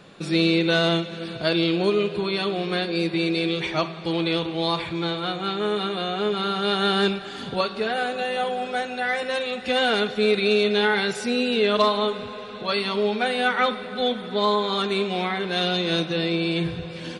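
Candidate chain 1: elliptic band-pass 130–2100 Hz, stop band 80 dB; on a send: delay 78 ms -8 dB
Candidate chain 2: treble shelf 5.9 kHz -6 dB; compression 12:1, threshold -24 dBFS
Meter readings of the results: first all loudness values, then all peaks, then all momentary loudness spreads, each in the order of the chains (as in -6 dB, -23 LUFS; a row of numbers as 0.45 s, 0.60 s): -24.5 LUFS, -29.0 LUFS; -8.0 dBFS, -15.0 dBFS; 7 LU, 3 LU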